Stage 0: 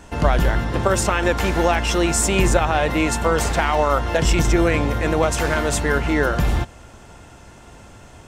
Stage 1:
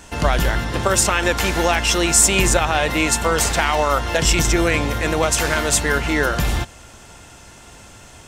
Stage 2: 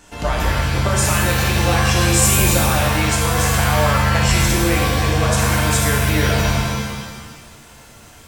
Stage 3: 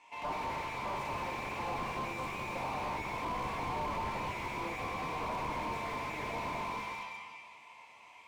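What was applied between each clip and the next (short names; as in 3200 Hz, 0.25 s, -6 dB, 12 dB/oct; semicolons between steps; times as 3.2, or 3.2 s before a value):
high shelf 2000 Hz +10 dB; gain -1.5 dB
shimmer reverb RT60 1.3 s, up +7 st, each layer -2 dB, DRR -1.5 dB; gain -6.5 dB
double band-pass 1500 Hz, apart 1.2 oct; slew limiter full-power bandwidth 18 Hz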